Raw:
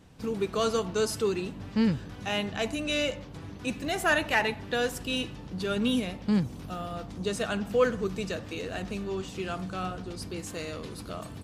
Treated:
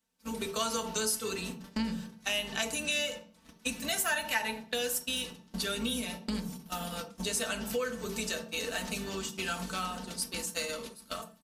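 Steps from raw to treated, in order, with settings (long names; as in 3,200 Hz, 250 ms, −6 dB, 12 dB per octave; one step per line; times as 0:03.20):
sub-octave generator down 2 octaves, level +1 dB
automatic gain control gain up to 7 dB
noise gate −27 dBFS, range −26 dB
RIAA equalisation recording
on a send at −4 dB: convolution reverb RT60 0.30 s, pre-delay 3 ms
on the sum: downward compressor 4 to 1, threshold −32 dBFS, peak gain reduction 18.5 dB
low-shelf EQ 490 Hz −6.5 dB
comb filter 4.5 ms, depth 51%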